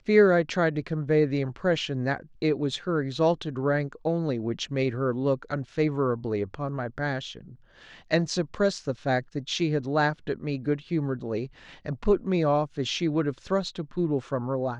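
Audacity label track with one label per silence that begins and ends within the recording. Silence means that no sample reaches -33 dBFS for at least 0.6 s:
7.370000	8.110000	silence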